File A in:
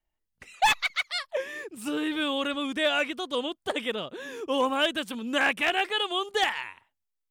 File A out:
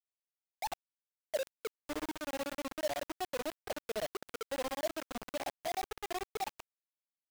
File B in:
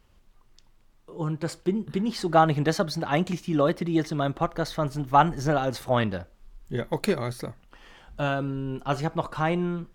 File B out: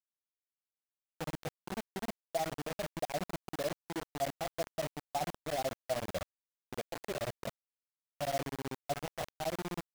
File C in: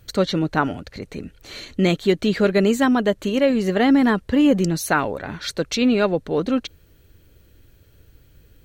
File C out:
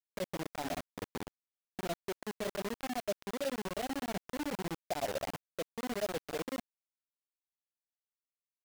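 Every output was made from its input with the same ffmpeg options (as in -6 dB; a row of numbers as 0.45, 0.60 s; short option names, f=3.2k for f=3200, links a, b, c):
-af "afftdn=nr=25:nf=-36,areverse,acompressor=threshold=-33dB:ratio=5,areverse,tremolo=f=16:d=0.85,aresample=16000,asoftclip=type=tanh:threshold=-33.5dB,aresample=44100,lowpass=f=690:t=q:w=4.9,acrusher=bits=5:mix=0:aa=0.000001,volume=-2dB"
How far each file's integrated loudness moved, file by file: -12.5, -13.0, -19.5 LU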